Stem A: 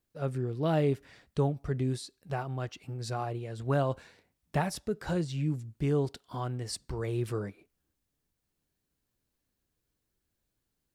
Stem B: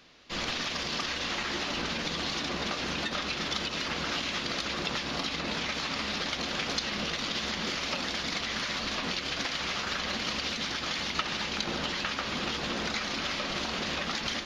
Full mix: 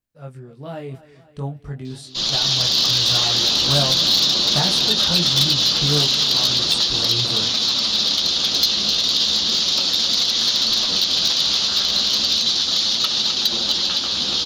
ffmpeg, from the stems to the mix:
ffmpeg -i stem1.wav -i stem2.wav -filter_complex "[0:a]equalizer=frequency=370:width_type=o:width=0.77:gain=-6,flanger=delay=20:depth=3.2:speed=0.49,volume=0dB,asplit=2[link_01][link_02];[link_02]volume=-17.5dB[link_03];[1:a]highshelf=frequency=2900:width_type=q:width=3:gain=10,flanger=delay=8:depth=7.4:regen=-19:speed=0.35:shape=sinusoidal,adelay=1850,volume=-1.5dB,asplit=2[link_04][link_05];[link_05]volume=-7.5dB[link_06];[link_03][link_06]amix=inputs=2:normalize=0,aecho=0:1:257|514|771|1028|1285|1542|1799|2056:1|0.56|0.314|0.176|0.0983|0.0551|0.0308|0.0173[link_07];[link_01][link_04][link_07]amix=inputs=3:normalize=0,dynaudnorm=framelen=630:gausssize=7:maxgain=16dB,asoftclip=type=hard:threshold=-10dB" out.wav

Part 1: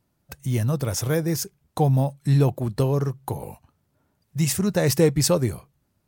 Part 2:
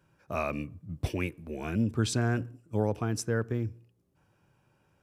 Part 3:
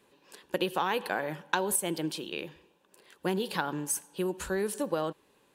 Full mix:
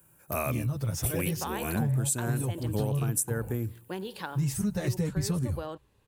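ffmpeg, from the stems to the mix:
ffmpeg -i stem1.wav -i stem2.wav -i stem3.wav -filter_complex "[0:a]asubboost=boost=6:cutoff=160,asplit=2[link_01][link_02];[link_02]adelay=8,afreqshift=-0.78[link_03];[link_01][link_03]amix=inputs=2:normalize=1,volume=-5.5dB[link_04];[1:a]aexciter=amount=12.6:drive=7:freq=7700,volume=1.5dB[link_05];[2:a]adelay=650,volume=-6.5dB[link_06];[link_04][link_05][link_06]amix=inputs=3:normalize=0,acompressor=threshold=-25dB:ratio=6" out.wav

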